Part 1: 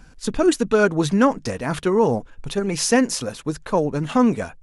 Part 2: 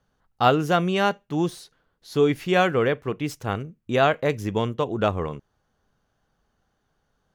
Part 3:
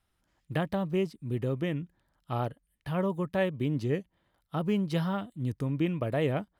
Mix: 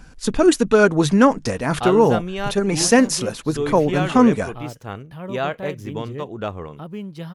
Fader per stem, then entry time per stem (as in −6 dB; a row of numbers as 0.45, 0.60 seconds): +3.0, −5.0, −4.0 decibels; 0.00, 1.40, 2.25 seconds